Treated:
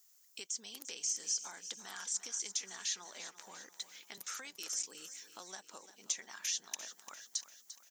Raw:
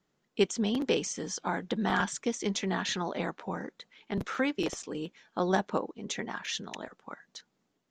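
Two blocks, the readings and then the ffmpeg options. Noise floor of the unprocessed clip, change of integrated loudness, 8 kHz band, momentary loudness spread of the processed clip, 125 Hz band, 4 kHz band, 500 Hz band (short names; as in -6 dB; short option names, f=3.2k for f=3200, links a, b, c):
-78 dBFS, -7.5 dB, +3.5 dB, 14 LU, under -30 dB, -4.5 dB, -26.0 dB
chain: -filter_complex "[0:a]acrossover=split=5300[a][b];[b]acompressor=threshold=-49dB:ratio=4:attack=1:release=60[c];[a][c]amix=inputs=2:normalize=0,aexciter=amount=4:drive=4.8:freq=5k,acompressor=threshold=-41dB:ratio=4,aderivative,asplit=2[d][e];[e]aecho=0:1:346|692|1038|1384|1730:0.224|0.114|0.0582|0.0297|0.0151[f];[d][f]amix=inputs=2:normalize=0,volume=9.5dB"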